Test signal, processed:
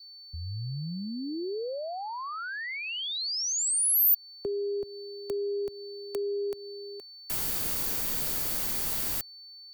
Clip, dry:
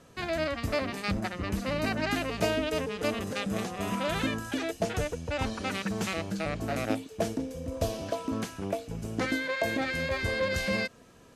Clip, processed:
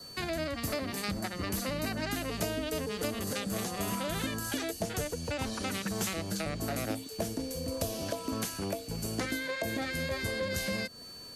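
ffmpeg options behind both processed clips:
-filter_complex "[0:a]aeval=exprs='val(0)+0.00251*sin(2*PI*4500*n/s)':c=same,adynamicequalizer=threshold=0.00224:dfrequency=2500:dqfactor=5.7:tfrequency=2500:tqfactor=5.7:attack=5:release=100:ratio=0.375:range=2:mode=cutabove:tftype=bell,acrossover=split=110|400[s0][s1][s2];[s0]acompressor=threshold=0.00631:ratio=4[s3];[s1]acompressor=threshold=0.0126:ratio=4[s4];[s2]acompressor=threshold=0.0126:ratio=4[s5];[s3][s4][s5]amix=inputs=3:normalize=0,aemphasis=mode=production:type=50fm,volume=1.26"

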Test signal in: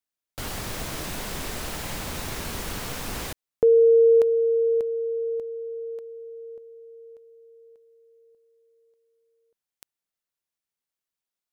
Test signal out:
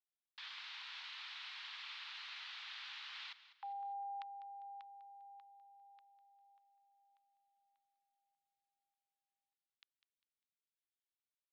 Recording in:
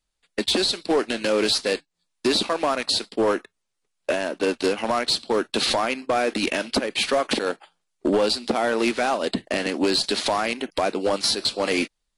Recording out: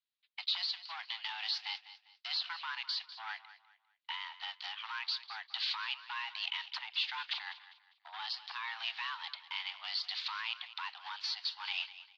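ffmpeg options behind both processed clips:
-af "aderivative,highpass=f=520:t=q:w=0.5412,highpass=f=520:t=q:w=1.307,lowpass=f=3600:t=q:w=0.5176,lowpass=f=3600:t=q:w=0.7071,lowpass=f=3600:t=q:w=1.932,afreqshift=340,aecho=1:1:200|400|600:0.178|0.0587|0.0194"

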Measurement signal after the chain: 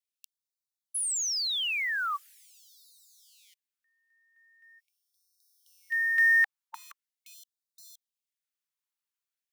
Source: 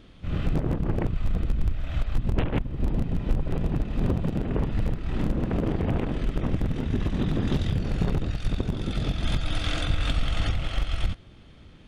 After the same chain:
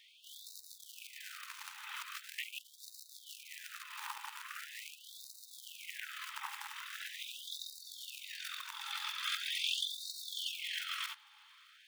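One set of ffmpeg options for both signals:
-af "acrusher=bits=7:mode=log:mix=0:aa=0.000001,afftfilt=real='re*gte(b*sr/1024,780*pow(3700/780,0.5+0.5*sin(2*PI*0.42*pts/sr)))':imag='im*gte(b*sr/1024,780*pow(3700/780,0.5+0.5*sin(2*PI*0.42*pts/sr)))':win_size=1024:overlap=0.75"

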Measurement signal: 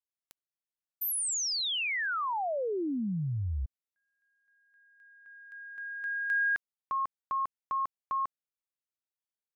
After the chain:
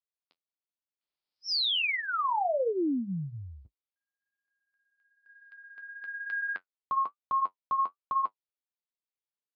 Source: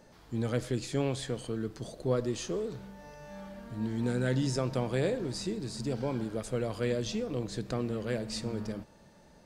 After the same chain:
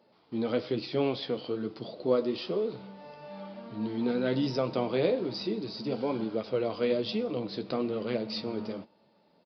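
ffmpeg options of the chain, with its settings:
-af "highpass=220,agate=range=0.355:threshold=0.00126:ratio=16:release=39:detection=peak,equalizer=f=1700:w=4.6:g=-10.5,flanger=delay=8.4:depth=4.5:regen=-44:speed=1.1:shape=triangular,aresample=11025,aresample=44100,volume=2.51"

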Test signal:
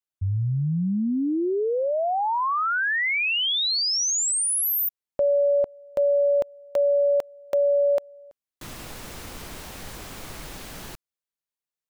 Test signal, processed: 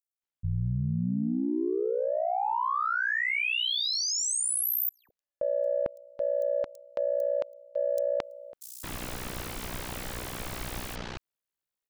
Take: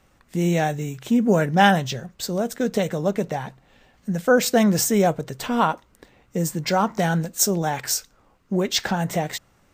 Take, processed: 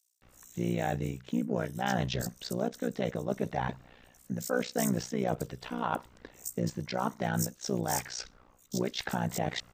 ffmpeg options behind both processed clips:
-filter_complex "[0:a]areverse,acompressor=threshold=0.0355:ratio=6:attack=4.2:release=547:knee=1:detection=rms,areverse,aeval=exprs='0.15*(cos(1*acos(clip(val(0)/0.15,-1,1)))-cos(1*PI/2))+0.0015*(cos(7*acos(clip(val(0)/0.15,-1,1)))-cos(7*PI/2))':c=same,tremolo=f=61:d=0.919,acrossover=split=5600[s0][s1];[s0]adelay=220[s2];[s2][s1]amix=inputs=2:normalize=0,volume=2.11"

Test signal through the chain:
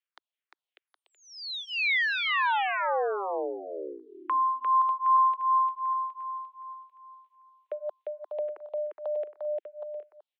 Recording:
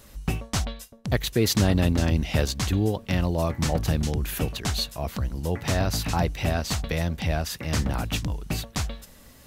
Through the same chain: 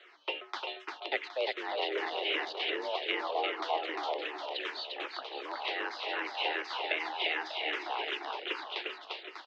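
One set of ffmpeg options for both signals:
-filter_complex "[0:a]aemphasis=mode=production:type=riaa,acompressor=threshold=0.0501:ratio=4,highpass=f=210:t=q:w=0.5412,highpass=f=210:t=q:w=1.307,lowpass=f=3400:t=q:w=0.5176,lowpass=f=3400:t=q:w=0.7071,lowpass=f=3400:t=q:w=1.932,afreqshift=150,aecho=1:1:350|595|766.5|886.6|970.6:0.631|0.398|0.251|0.158|0.1,asplit=2[s0][s1];[s1]afreqshift=-2.6[s2];[s0][s2]amix=inputs=2:normalize=1,volume=1.26"

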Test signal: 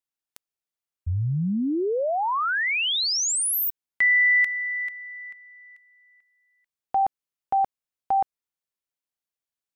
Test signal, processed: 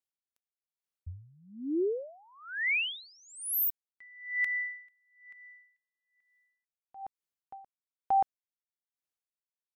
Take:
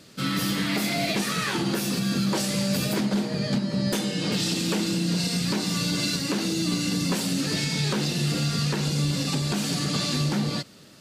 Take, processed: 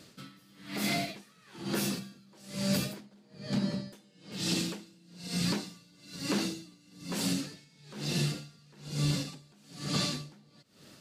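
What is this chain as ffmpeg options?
-af "aeval=exprs='val(0)*pow(10,-32*(0.5-0.5*cos(2*PI*1.1*n/s))/20)':c=same,volume=0.708"

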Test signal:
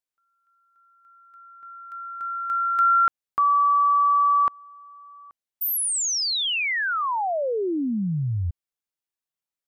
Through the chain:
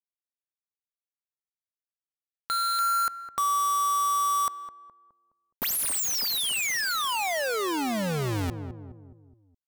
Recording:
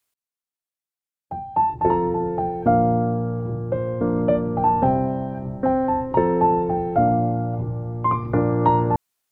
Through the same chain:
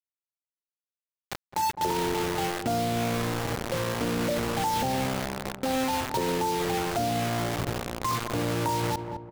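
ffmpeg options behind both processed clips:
-filter_complex "[0:a]acrusher=bits=3:mix=0:aa=0.000001,asplit=2[s0][s1];[s1]adelay=209,lowpass=f=920:p=1,volume=0.2,asplit=2[s2][s3];[s3]adelay=209,lowpass=f=920:p=1,volume=0.49,asplit=2[s4][s5];[s5]adelay=209,lowpass=f=920:p=1,volume=0.49,asplit=2[s6][s7];[s7]adelay=209,lowpass=f=920:p=1,volume=0.49,asplit=2[s8][s9];[s9]adelay=209,lowpass=f=920:p=1,volume=0.49[s10];[s0][s2][s4][s6][s8][s10]amix=inputs=6:normalize=0,acompressor=threshold=0.0562:ratio=4:attack=0.92:release=47:detection=peak"

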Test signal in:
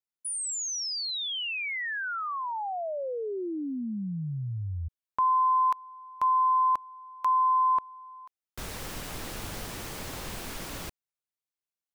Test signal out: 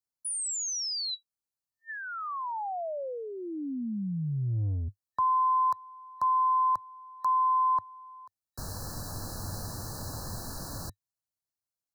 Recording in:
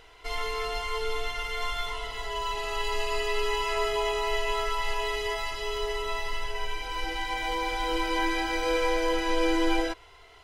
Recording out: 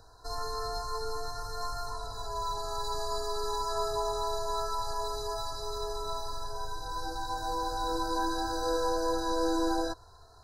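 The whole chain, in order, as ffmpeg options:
-filter_complex "[0:a]afftfilt=real='re*(1-between(b*sr/4096,1800,3900))':imag='im*(1-between(b*sr/4096,1800,3900))':win_size=4096:overlap=0.75,equalizer=f=100:t=o:w=0.67:g=9,equalizer=f=400:t=o:w=0.67:g=-6,equalizer=f=1600:t=o:w=0.67:g=-6,acrossover=split=120|2000[s0][s1][s2];[s0]asoftclip=type=tanh:threshold=0.0211[s3];[s3][s1][s2]amix=inputs=3:normalize=0"

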